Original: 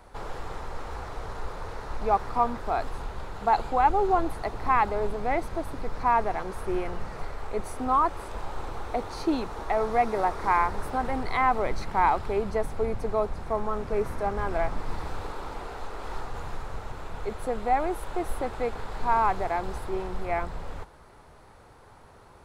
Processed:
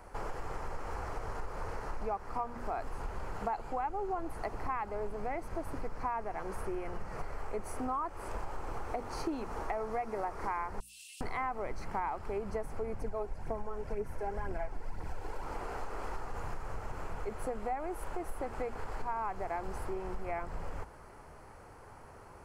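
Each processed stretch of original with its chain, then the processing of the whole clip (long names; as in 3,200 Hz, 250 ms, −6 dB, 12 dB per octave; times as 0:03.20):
0:10.80–0:11.21: Chebyshev high-pass with heavy ripple 2,600 Hz, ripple 6 dB + envelope flattener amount 100%
0:13.01–0:15.45: notch filter 1,200 Hz, Q 5.4 + phase shifter 2 Hz, delay 2.9 ms, feedback 47%
whole clip: parametric band 3,700 Hz −13.5 dB 0.34 octaves; mains-hum notches 60/120/180/240 Hz; downward compressor 6 to 1, threshold −33 dBFS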